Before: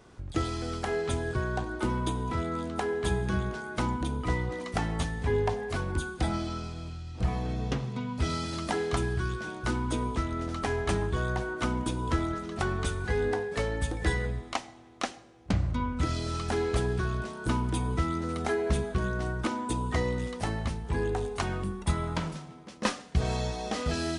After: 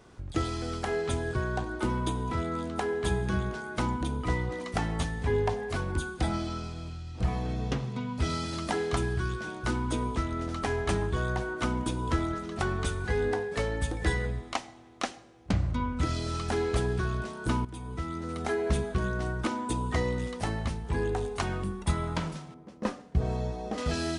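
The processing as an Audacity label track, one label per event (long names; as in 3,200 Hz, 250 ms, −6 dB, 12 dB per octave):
17.650000	18.660000	fade in, from −14.5 dB
22.540000	23.780000	drawn EQ curve 440 Hz 0 dB, 660 Hz −2 dB, 3,500 Hz −13 dB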